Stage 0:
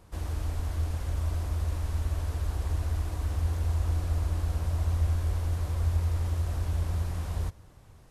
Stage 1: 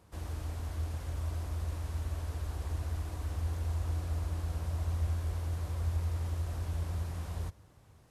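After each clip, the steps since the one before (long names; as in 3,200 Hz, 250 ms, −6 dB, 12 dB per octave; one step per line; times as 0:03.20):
high-pass filter 58 Hz
level −4.5 dB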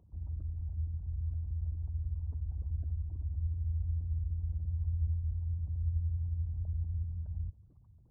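spectral envelope exaggerated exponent 3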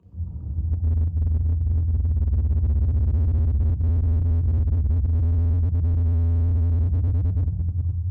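flutter between parallel walls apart 10.9 metres, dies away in 0.26 s
convolution reverb RT60 2.8 s, pre-delay 3 ms, DRR −6 dB
slew-rate limiting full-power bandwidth 10 Hz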